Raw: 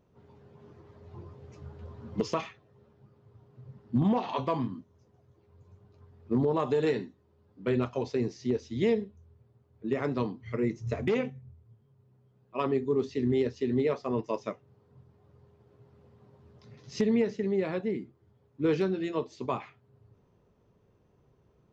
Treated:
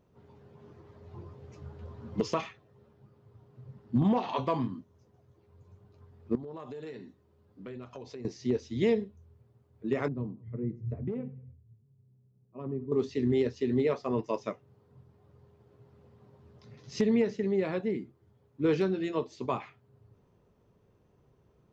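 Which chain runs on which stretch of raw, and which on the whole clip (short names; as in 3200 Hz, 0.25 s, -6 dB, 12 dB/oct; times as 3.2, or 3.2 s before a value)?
6.35–8.25 notch 880 Hz, Q 24 + compressor 4:1, threshold -42 dBFS
10.08–12.92 band-pass 130 Hz, Q 1 + feedback echo 0.1 s, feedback 43%, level -21 dB
whole clip: dry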